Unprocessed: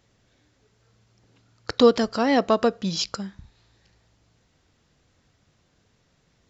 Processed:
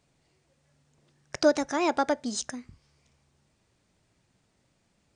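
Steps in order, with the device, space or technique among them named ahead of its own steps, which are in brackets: nightcore (varispeed +26%); gain -5.5 dB

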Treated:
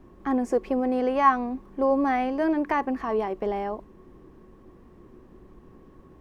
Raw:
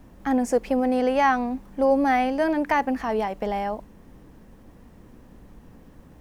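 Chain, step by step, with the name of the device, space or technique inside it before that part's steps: inside a helmet (high shelf 5000 Hz -10 dB; small resonant body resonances 370/1100 Hz, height 15 dB, ringing for 70 ms); gain -4 dB

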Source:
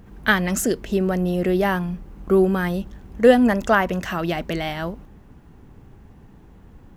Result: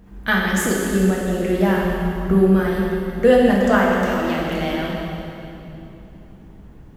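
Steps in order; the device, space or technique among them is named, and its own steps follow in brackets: 1.77–2.32 tone controls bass +6 dB, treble 0 dB; stairwell (reverb RT60 3.0 s, pre-delay 3 ms, DRR -3.5 dB); gain -3.5 dB

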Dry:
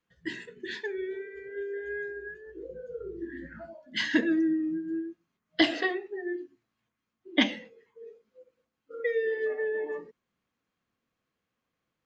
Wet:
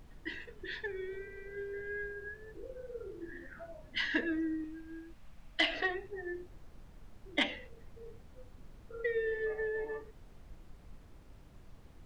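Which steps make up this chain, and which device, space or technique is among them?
aircraft cabin announcement (BPF 420–3900 Hz; soft clip -14.5 dBFS, distortion -22 dB; brown noise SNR 11 dB); 4.64–5.75 fifteen-band EQ 100 Hz -9 dB, 400 Hz -11 dB, 2500 Hz +4 dB; gain -3 dB

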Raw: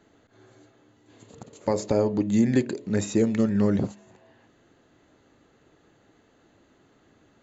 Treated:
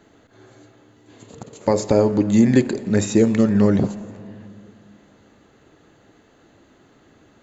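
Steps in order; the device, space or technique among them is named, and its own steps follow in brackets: saturated reverb return (on a send at -14 dB: reverb RT60 2.4 s, pre-delay 42 ms + soft clip -21.5 dBFS, distortion -11 dB); on the sum: gain +6.5 dB

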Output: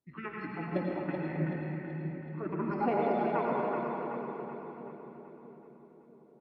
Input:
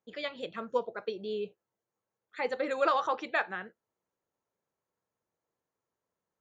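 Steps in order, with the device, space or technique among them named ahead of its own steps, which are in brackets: 1.18–2.68 air absorption 250 m; monster voice (pitch shift -5 st; formant shift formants -4 st; low shelf 190 Hz +7 dB; reverb RT60 2.4 s, pre-delay 82 ms, DRR -1.5 dB); split-band echo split 460 Hz, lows 0.644 s, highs 0.379 s, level -4.5 dB; gain -5 dB

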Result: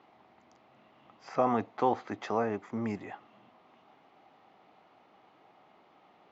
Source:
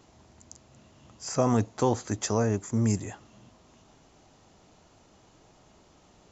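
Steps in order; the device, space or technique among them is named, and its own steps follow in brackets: kitchen radio (speaker cabinet 230–3600 Hz, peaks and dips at 780 Hz +8 dB, 1200 Hz +6 dB, 2100 Hz +6 dB); gain -4 dB

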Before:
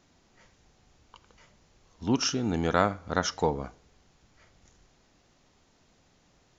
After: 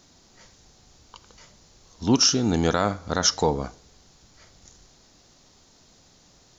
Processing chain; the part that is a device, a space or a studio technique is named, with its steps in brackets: over-bright horn tweeter (resonant high shelf 3400 Hz +6 dB, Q 1.5; limiter -14 dBFS, peak gain reduction 7 dB); gain +6 dB

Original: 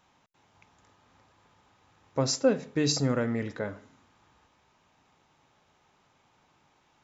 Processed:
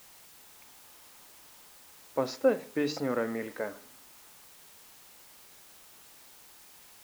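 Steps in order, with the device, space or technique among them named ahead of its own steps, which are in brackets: wax cylinder (BPF 300–2700 Hz; wow and flutter; white noise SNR 18 dB)

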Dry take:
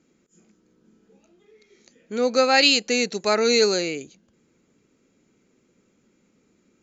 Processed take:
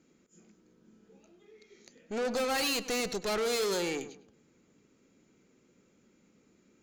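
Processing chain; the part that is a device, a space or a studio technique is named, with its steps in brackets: rockabilly slapback (tube stage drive 29 dB, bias 0.5; tape echo 0.1 s, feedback 34%, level -10.5 dB, low-pass 2000 Hz)

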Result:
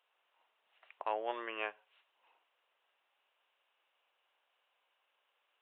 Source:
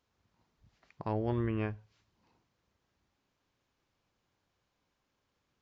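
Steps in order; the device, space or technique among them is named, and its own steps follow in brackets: musical greeting card (downsampling 8000 Hz; HPF 560 Hz 24 dB/oct; bell 2800 Hz +8 dB 0.27 oct); gain +3 dB

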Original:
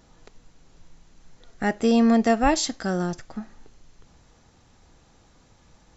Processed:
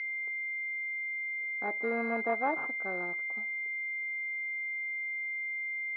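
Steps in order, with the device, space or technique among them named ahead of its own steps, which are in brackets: toy sound module (decimation joined by straight lines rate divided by 6×; pulse-width modulation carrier 2100 Hz; speaker cabinet 550–4500 Hz, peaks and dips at 620 Hz -3 dB, 1500 Hz +4 dB, 3500 Hz -7 dB); gain -4.5 dB

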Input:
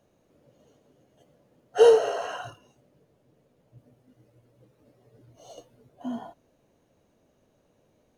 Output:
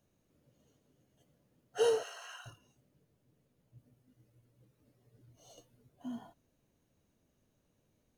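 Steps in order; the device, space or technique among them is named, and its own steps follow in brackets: smiley-face EQ (low shelf 160 Hz +4.5 dB; bell 600 Hz -7 dB 1.6 oct; high shelf 7900 Hz +7.5 dB); 2.03–2.46 HPF 1200 Hz 12 dB/oct; gain -8 dB

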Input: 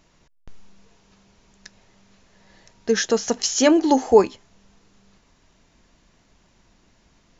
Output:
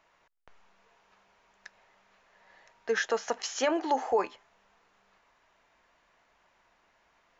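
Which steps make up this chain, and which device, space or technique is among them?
DJ mixer with the lows and highs turned down (three-band isolator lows -21 dB, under 550 Hz, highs -15 dB, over 2600 Hz; limiter -17 dBFS, peak gain reduction 9 dB)

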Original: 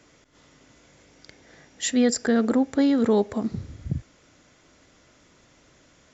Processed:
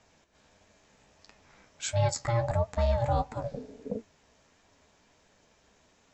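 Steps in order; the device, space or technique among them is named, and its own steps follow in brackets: alien voice (ring modulator 350 Hz; flange 1.5 Hz, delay 8.7 ms, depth 8 ms, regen +48%)

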